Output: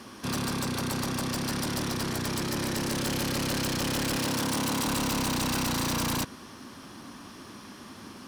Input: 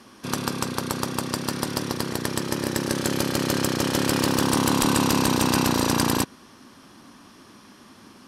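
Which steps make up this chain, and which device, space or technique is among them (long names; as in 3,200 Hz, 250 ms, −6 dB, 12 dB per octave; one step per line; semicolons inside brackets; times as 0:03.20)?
open-reel tape (soft clipping −30.5 dBFS, distortion −4 dB; parametric band 84 Hz +3 dB 1.12 octaves; white noise bed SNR 44 dB)
0:04.17–0:04.87: high-pass filter 87 Hz
level +3.5 dB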